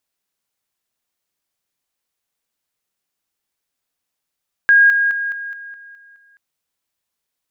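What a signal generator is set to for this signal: level ladder 1630 Hz -7 dBFS, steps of -6 dB, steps 8, 0.21 s 0.00 s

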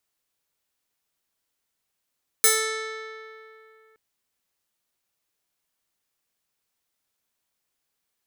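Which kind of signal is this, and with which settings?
plucked string A4, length 1.52 s, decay 2.73 s, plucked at 0.46, bright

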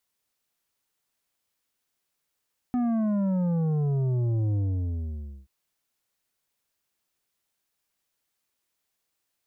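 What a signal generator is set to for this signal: sub drop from 250 Hz, over 2.73 s, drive 8.5 dB, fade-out 0.92 s, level -23.5 dB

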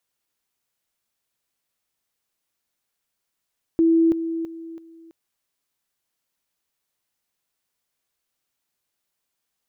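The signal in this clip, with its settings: level ladder 329 Hz -13.5 dBFS, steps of -10 dB, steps 4, 0.33 s 0.00 s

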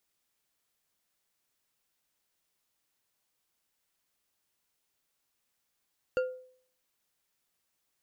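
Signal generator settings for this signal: glass hit bar, lowest mode 510 Hz, decay 0.55 s, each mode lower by 8 dB, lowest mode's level -23 dB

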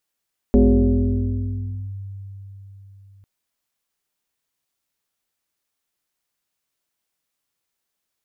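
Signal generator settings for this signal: FM tone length 2.70 s, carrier 98.2 Hz, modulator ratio 1.57, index 2.2, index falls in 1.40 s linear, decay 4.28 s, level -9 dB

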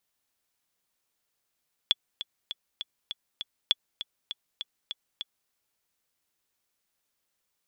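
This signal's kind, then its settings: metronome 200 bpm, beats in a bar 6, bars 2, 3410 Hz, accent 13.5 dB -7.5 dBFS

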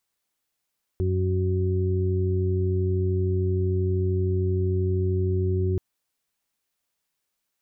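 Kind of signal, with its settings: steady additive tone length 4.78 s, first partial 93 Hz, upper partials -11/-18/-5 dB, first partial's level -22 dB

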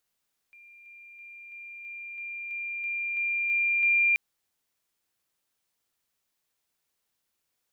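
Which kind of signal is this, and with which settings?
level ladder 2390 Hz -49.5 dBFS, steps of 3 dB, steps 11, 0.33 s 0.00 s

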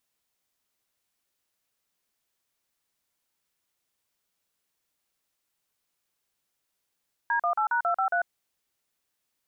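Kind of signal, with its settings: DTMF "D18#253", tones 96 ms, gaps 41 ms, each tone -25 dBFS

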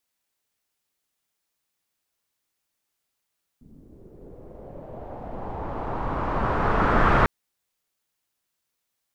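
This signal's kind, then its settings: swept filtered noise pink, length 3.65 s lowpass, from 230 Hz, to 1400 Hz, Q 2.3, linear, gain ramp +34 dB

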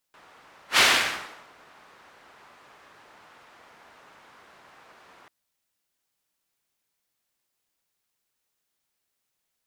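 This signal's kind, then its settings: whoosh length 5.14 s, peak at 0.64, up 0.11 s, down 0.78 s, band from 1200 Hz, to 2600 Hz, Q 1, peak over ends 36.5 dB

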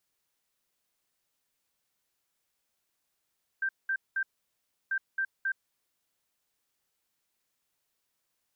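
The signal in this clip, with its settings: beep pattern sine 1570 Hz, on 0.07 s, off 0.20 s, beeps 3, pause 0.68 s, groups 2, -26.5 dBFS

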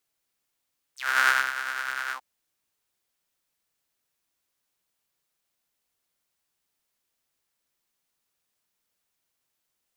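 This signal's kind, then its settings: synth patch with tremolo C3, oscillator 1 saw, detune 27 cents, noise -30 dB, filter highpass, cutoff 810 Hz, Q 7, filter envelope 3.5 oct, filter decay 0.07 s, filter sustain 25%, attack 0.293 s, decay 0.25 s, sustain -12 dB, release 0.07 s, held 1.17 s, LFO 9.9 Hz, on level 3.5 dB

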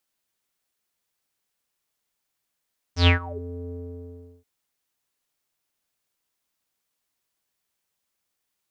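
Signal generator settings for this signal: synth note square F2 12 dB/oct, low-pass 390 Hz, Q 11, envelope 4 oct, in 0.42 s, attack 0.109 s, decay 0.12 s, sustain -22 dB, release 0.73 s, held 0.75 s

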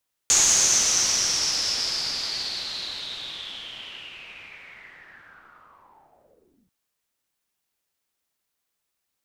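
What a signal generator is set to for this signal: swept filtered noise white, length 6.39 s lowpass, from 6700 Hz, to 150 Hz, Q 7.5, linear, gain ramp -34 dB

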